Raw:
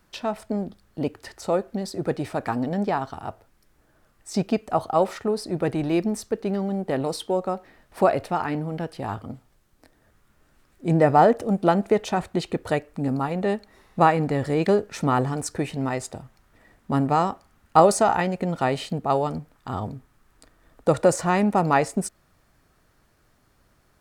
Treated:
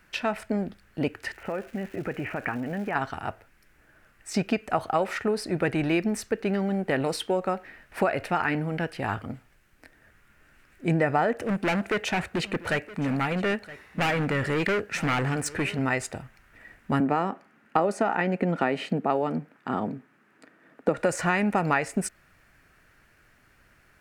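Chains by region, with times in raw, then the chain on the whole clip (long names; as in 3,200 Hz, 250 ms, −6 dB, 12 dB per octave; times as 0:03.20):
0:01.32–0:02.94: Butterworth low-pass 3,000 Hz 96 dB per octave + downward compressor, threshold −27 dBFS + surface crackle 490 per second −44 dBFS
0:11.36–0:15.79: high-pass filter 51 Hz 24 dB per octave + gain into a clipping stage and back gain 23 dB + single-tap delay 969 ms −18.5 dB
0:17.00–0:20.98: high-pass filter 200 Hz 24 dB per octave + spectral tilt −3 dB per octave
whole clip: flat-topped bell 2,000 Hz +9.5 dB 1.2 octaves; downward compressor 6 to 1, threshold −20 dBFS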